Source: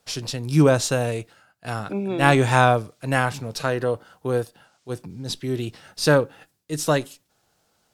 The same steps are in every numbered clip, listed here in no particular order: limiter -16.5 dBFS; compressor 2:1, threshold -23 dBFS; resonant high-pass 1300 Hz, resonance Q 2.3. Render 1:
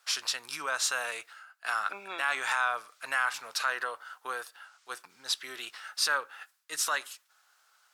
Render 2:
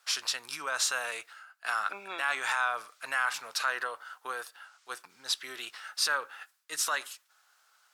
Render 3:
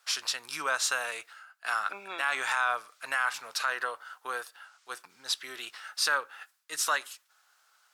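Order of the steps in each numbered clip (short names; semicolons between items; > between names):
compressor > limiter > resonant high-pass; limiter > compressor > resonant high-pass; compressor > resonant high-pass > limiter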